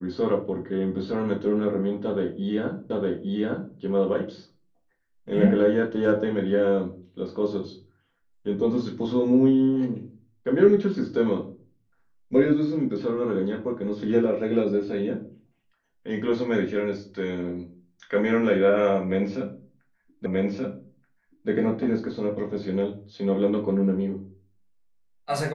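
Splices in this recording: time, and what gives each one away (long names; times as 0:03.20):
0:02.90: the same again, the last 0.86 s
0:20.26: the same again, the last 1.23 s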